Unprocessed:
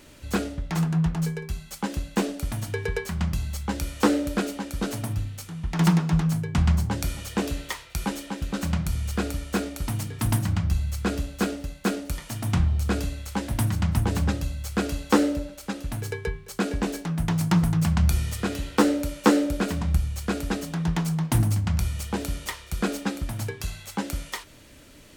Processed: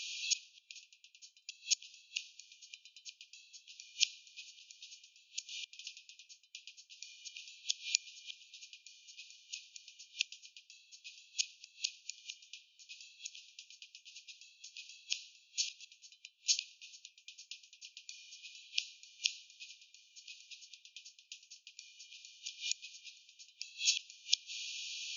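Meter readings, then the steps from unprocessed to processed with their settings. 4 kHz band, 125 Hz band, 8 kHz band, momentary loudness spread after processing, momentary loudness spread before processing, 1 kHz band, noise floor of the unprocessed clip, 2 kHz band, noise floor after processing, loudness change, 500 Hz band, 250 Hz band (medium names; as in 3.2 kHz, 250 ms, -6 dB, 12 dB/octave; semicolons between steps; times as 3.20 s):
-1.5 dB, under -40 dB, -3.5 dB, 19 LU, 10 LU, under -40 dB, -48 dBFS, -13.0 dB, -70 dBFS, -13.0 dB, under -40 dB, under -40 dB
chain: inverted gate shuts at -25 dBFS, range -26 dB; FFT band-pass 2.4–6.9 kHz; trim +14.5 dB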